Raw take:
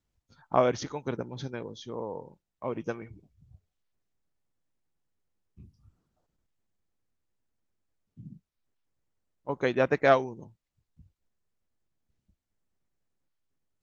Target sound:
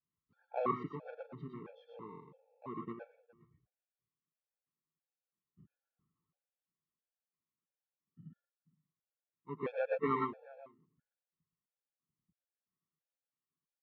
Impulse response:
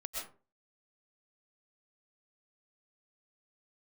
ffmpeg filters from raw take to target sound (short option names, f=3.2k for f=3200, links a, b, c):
-filter_complex "[1:a]atrim=start_sample=2205,afade=t=out:st=0.17:d=0.01,atrim=end_sample=7938[a];[0:a][a]afir=irnorm=-1:irlink=0,adynamicequalizer=threshold=0.0112:dfrequency=320:dqfactor=0.71:tfrequency=320:tqfactor=0.71:attack=5:release=100:ratio=0.375:range=3.5:mode=boostabove:tftype=bell,asplit=2[b][c];[c]adelay=408.2,volume=-22dB,highshelf=f=4k:g=-9.18[d];[b][d]amix=inputs=2:normalize=0,asplit=2[e][f];[f]acrusher=samples=28:mix=1:aa=0.000001,volume=-11.5dB[g];[e][g]amix=inputs=2:normalize=0,highpass=150,equalizer=f=160:t=q:w=4:g=10,equalizer=f=640:t=q:w=4:g=-6,equalizer=f=1.1k:t=q:w=4:g=10,lowpass=f=2.7k:w=0.5412,lowpass=f=2.7k:w=1.3066,bandreject=f=960:w=18,afftfilt=real='re*gt(sin(2*PI*1.5*pts/sr)*(1-2*mod(floor(b*sr/1024/450),2)),0)':imag='im*gt(sin(2*PI*1.5*pts/sr)*(1-2*mod(floor(b*sr/1024/450),2)),0)':win_size=1024:overlap=0.75,volume=-8.5dB"